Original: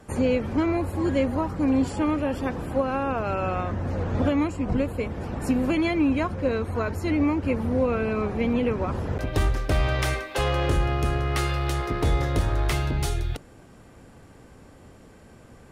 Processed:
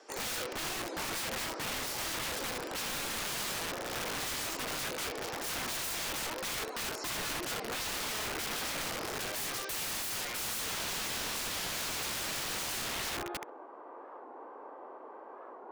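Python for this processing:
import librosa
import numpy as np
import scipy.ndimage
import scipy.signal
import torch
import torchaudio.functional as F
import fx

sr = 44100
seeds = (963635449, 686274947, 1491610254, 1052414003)

p1 = scipy.signal.sosfilt(scipy.signal.butter(6, 330.0, 'highpass', fs=sr, output='sos'), x)
p2 = fx.high_shelf(p1, sr, hz=9200.0, db=3.0)
p3 = fx.rider(p2, sr, range_db=5, speed_s=2.0)
p4 = fx.filter_sweep_lowpass(p3, sr, from_hz=5400.0, to_hz=1000.0, start_s=10.04, end_s=10.64, q=3.7)
p5 = p4 + fx.room_flutter(p4, sr, wall_m=11.3, rt60_s=0.41, dry=0)
p6 = (np.mod(10.0 ** (29.0 / 20.0) * p5 + 1.0, 2.0) - 1.0) / 10.0 ** (29.0 / 20.0)
p7 = fx.record_warp(p6, sr, rpm=45.0, depth_cents=160.0)
y = p7 * 10.0 ** (-2.5 / 20.0)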